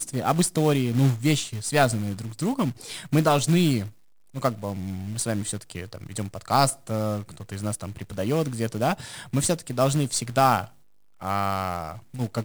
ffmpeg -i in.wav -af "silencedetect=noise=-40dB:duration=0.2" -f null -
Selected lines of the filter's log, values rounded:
silence_start: 3.90
silence_end: 4.34 | silence_duration: 0.45
silence_start: 10.68
silence_end: 11.21 | silence_duration: 0.53